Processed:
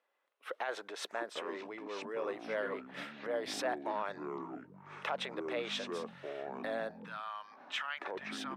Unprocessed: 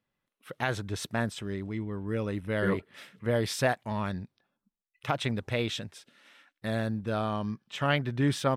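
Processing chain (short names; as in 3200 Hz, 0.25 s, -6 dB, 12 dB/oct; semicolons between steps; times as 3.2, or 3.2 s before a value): LPF 1500 Hz 6 dB/oct; compressor 2.5:1, threshold -36 dBFS, peak gain reduction 9.5 dB; limiter -32.5 dBFS, peak gain reduction 9.5 dB; HPF 470 Hz 24 dB/oct, from 6.91 s 1100 Hz; echoes that change speed 0.452 s, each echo -7 st, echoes 2, each echo -6 dB; gain +8.5 dB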